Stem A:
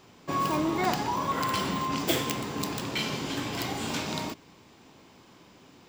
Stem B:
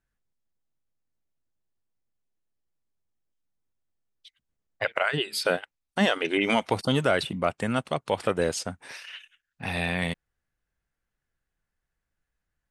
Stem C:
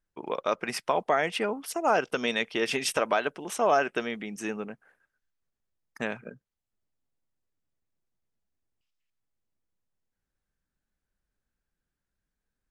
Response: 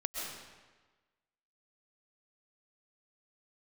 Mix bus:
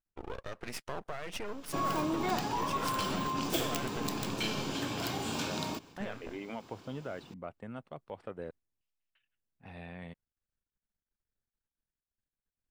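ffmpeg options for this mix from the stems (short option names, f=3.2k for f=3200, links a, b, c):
-filter_complex "[0:a]bandreject=f=2k:w=6.4,adelay=1450,volume=-1dB[a];[1:a]lowpass=f=1.1k:p=1,volume=-15.5dB,asplit=3[b][c][d];[b]atrim=end=8.51,asetpts=PTS-STARTPTS,afade=t=out:st=8.506:d=0.004:c=hsin[e];[c]atrim=start=8.51:end=9.15,asetpts=PTS-STARTPTS,volume=0[f];[d]atrim=start=9.15,asetpts=PTS-STARTPTS,afade=t=in:d=0.004:c=hsin[g];[e][f][g]concat=n=3:v=0:a=1[h];[2:a]lowshelf=f=480:g=4,alimiter=limit=-21.5dB:level=0:latency=1:release=33,aeval=exprs='max(val(0),0)':c=same,volume=-2dB[i];[a][h][i]amix=inputs=3:normalize=0,agate=range=-7dB:threshold=-52dB:ratio=16:detection=peak,acompressor=threshold=-35dB:ratio=1.5"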